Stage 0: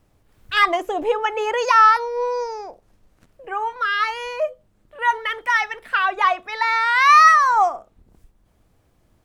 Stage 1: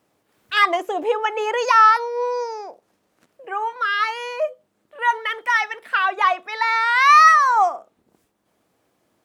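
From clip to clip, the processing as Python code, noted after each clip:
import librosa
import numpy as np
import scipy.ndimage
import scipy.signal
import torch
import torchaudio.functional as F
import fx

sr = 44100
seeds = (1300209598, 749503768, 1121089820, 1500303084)

y = scipy.signal.sosfilt(scipy.signal.butter(2, 250.0, 'highpass', fs=sr, output='sos'), x)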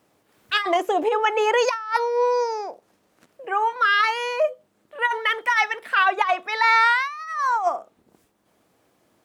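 y = fx.over_compress(x, sr, threshold_db=-19.0, ratio=-0.5)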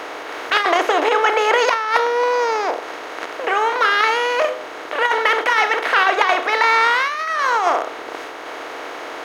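y = fx.bin_compress(x, sr, power=0.4)
y = y * 10.0 ** (-1.0 / 20.0)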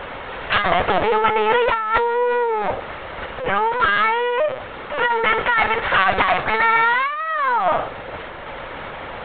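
y = fx.lpc_vocoder(x, sr, seeds[0], excitation='pitch_kept', order=16)
y = y * 10.0 ** (-1.0 / 20.0)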